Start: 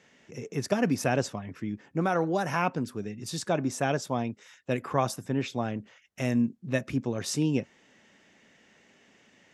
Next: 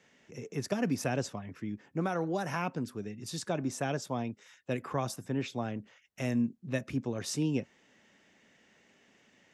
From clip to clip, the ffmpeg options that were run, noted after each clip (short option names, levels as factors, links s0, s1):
-filter_complex "[0:a]acrossover=split=350|3000[s0][s1][s2];[s1]acompressor=threshold=0.0398:ratio=2.5[s3];[s0][s3][s2]amix=inputs=3:normalize=0,volume=0.631"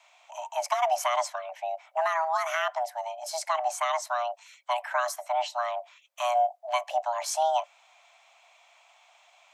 -af "afreqshift=480,volume=1.78"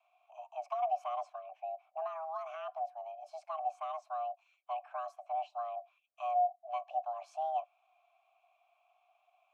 -filter_complex "[0:a]asplit=3[s0][s1][s2];[s0]bandpass=f=730:t=q:w=8,volume=1[s3];[s1]bandpass=f=1090:t=q:w=8,volume=0.501[s4];[s2]bandpass=f=2440:t=q:w=8,volume=0.355[s5];[s3][s4][s5]amix=inputs=3:normalize=0,volume=0.562"